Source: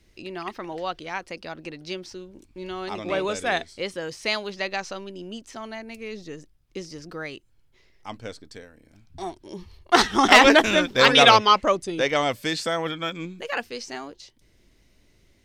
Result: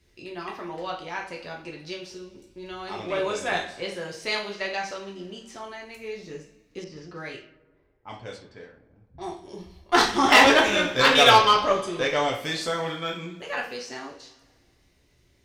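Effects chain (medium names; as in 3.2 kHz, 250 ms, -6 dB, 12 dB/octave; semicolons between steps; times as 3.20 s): two-slope reverb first 0.42 s, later 1.8 s, from -18 dB, DRR -2 dB; 6.84–9.41 s: level-controlled noise filter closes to 790 Hz, open at -27.5 dBFS; Chebyshev shaper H 6 -26 dB, 8 -24 dB, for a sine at 3.5 dBFS; trim -5.5 dB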